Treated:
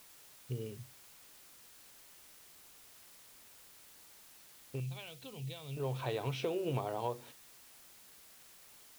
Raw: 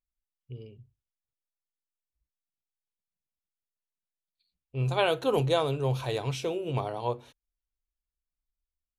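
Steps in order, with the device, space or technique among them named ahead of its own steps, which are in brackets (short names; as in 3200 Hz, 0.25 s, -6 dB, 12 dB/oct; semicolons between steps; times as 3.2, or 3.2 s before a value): medium wave at night (BPF 110–3600 Hz; compressor, threshold -40 dBFS, peak gain reduction 18 dB; tremolo 0.3 Hz, depth 43%; whine 10000 Hz -79 dBFS; white noise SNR 16 dB); 4.8–5.77 band shelf 680 Hz -14 dB 2.9 oct; gain +7 dB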